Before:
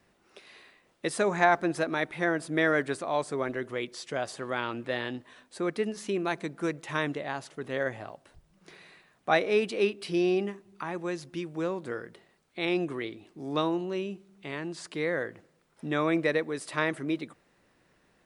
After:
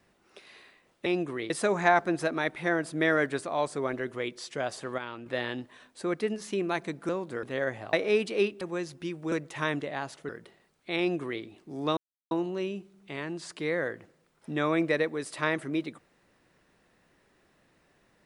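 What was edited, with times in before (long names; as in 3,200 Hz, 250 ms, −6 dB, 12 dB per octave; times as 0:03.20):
0:04.54–0:04.82: clip gain −7 dB
0:06.65–0:07.62: swap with 0:11.64–0:11.98
0:08.12–0:09.35: remove
0:10.03–0:10.93: remove
0:12.68–0:13.12: duplicate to 0:01.06
0:13.66: splice in silence 0.34 s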